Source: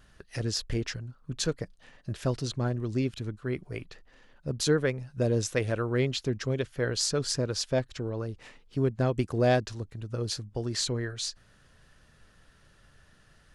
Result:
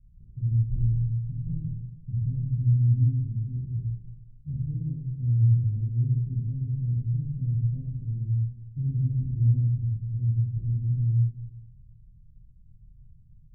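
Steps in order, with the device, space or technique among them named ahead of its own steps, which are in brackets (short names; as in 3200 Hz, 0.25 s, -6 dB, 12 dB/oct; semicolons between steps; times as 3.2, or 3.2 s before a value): club heard from the street (limiter -19 dBFS, peak gain reduction 7 dB; LPF 140 Hz 24 dB/oct; reverb RT60 1.1 s, pre-delay 16 ms, DRR -7 dB); gain +1.5 dB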